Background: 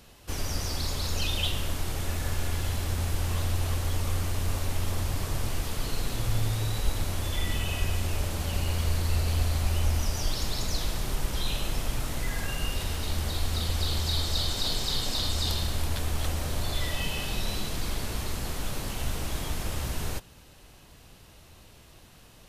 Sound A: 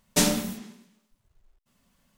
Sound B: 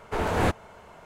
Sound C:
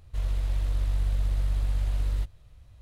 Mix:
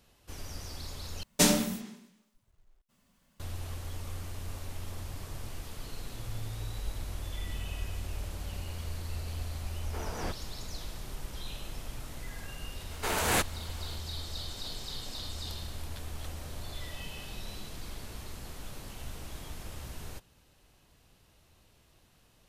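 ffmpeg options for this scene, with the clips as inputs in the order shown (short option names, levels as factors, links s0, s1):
-filter_complex "[2:a]asplit=2[s0][s1];[0:a]volume=0.282[s2];[s1]crystalizer=i=9.5:c=0[s3];[s2]asplit=2[s4][s5];[s4]atrim=end=1.234[s6];[1:a]atrim=end=2.17,asetpts=PTS-STARTPTS,volume=0.841[s7];[s5]atrim=start=3.396[s8];[3:a]atrim=end=2.81,asetpts=PTS-STARTPTS,volume=0.188,afade=t=in:d=0.004:c=hsin,afade=t=out:st=2.806:d=0.004:c=hsin,adelay=6400[s9];[s0]atrim=end=1.05,asetpts=PTS-STARTPTS,volume=0.2,afade=t=in:d=0.004:c=hsin,afade=t=out:st=1.046:d=0.004:c=hsin,adelay=9810[s10];[s3]atrim=end=1.05,asetpts=PTS-STARTPTS,volume=0.376,afade=t=in:d=0.004:c=hsin,afade=t=out:st=1.046:d=0.004:c=hsin,adelay=12910[s11];[s6][s7]acrossfade=d=0.004:c1=hsin:c2=hsin[s12];[s12][s8]acrossfade=d=0.004:c1=hsin:c2=hsin[s13];[s13][s9][s10][s11]amix=inputs=4:normalize=0"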